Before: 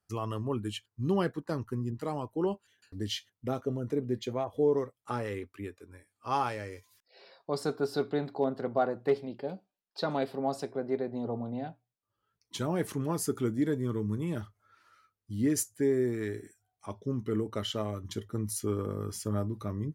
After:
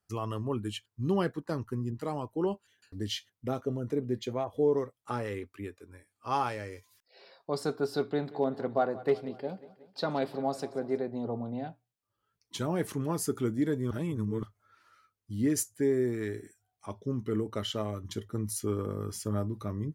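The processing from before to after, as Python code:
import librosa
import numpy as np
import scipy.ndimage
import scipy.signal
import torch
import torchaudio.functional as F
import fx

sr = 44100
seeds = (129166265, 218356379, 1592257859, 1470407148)

y = fx.echo_feedback(x, sr, ms=181, feedback_pct=57, wet_db=-18, at=(8.01, 11.03))
y = fx.edit(y, sr, fx.reverse_span(start_s=13.91, length_s=0.52), tone=tone)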